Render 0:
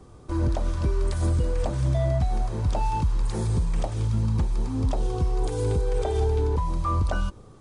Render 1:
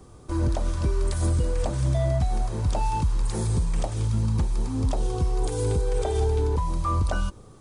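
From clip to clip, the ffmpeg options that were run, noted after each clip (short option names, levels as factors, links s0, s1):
-af "highshelf=f=7800:g=10.5"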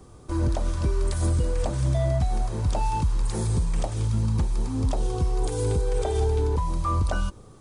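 -af anull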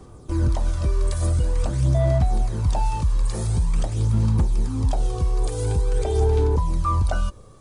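-af "aphaser=in_gain=1:out_gain=1:delay=1.8:decay=0.4:speed=0.47:type=sinusoidal"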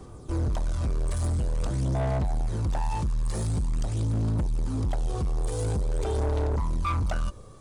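-af "asoftclip=type=tanh:threshold=0.0708"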